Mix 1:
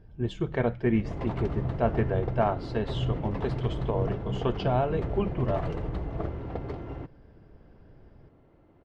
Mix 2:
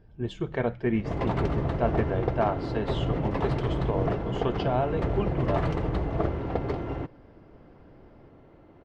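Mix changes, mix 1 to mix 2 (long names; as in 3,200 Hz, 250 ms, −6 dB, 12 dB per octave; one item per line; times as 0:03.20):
background +7.5 dB
master: add low-shelf EQ 180 Hz −4 dB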